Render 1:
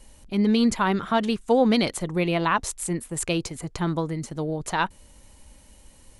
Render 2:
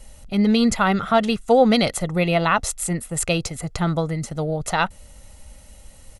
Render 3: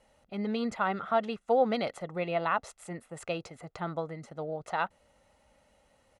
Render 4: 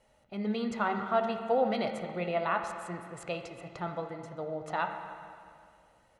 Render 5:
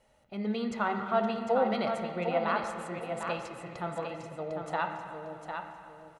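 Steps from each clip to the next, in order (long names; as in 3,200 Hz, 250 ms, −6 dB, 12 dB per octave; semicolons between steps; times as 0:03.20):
comb filter 1.5 ms, depth 50%; level +4 dB
resonant band-pass 820 Hz, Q 0.57; level −8.5 dB
convolution reverb RT60 2.2 s, pre-delay 4 ms, DRR 4 dB; level −2 dB
repeating echo 752 ms, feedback 30%, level −6.5 dB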